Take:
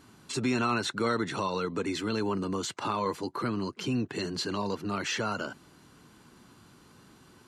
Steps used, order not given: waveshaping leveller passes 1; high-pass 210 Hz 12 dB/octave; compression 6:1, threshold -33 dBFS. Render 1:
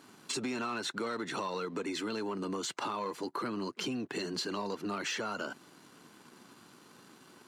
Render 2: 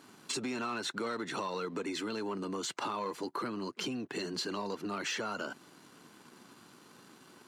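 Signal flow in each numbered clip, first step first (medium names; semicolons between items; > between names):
waveshaping leveller > high-pass > compression; waveshaping leveller > compression > high-pass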